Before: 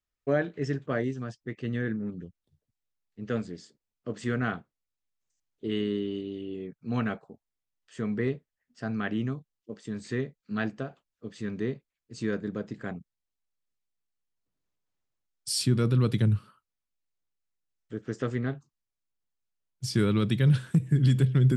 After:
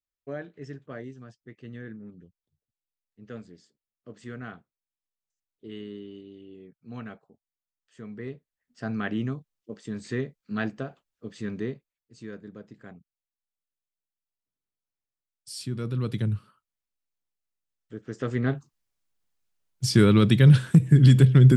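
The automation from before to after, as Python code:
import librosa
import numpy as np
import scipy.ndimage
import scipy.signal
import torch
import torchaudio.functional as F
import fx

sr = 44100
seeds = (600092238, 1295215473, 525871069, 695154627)

y = fx.gain(x, sr, db=fx.line((8.15, -10.0), (8.85, 1.0), (11.55, 1.0), (12.19, -10.0), (15.52, -10.0), (16.16, -3.0), (18.09, -3.0), (18.55, 7.0)))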